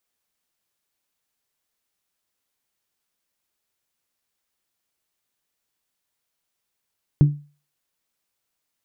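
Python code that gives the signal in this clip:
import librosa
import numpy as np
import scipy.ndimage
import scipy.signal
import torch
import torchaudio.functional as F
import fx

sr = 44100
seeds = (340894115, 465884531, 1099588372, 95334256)

y = fx.strike_glass(sr, length_s=0.89, level_db=-7, body='bell', hz=146.0, decay_s=0.35, tilt_db=11.5, modes=5)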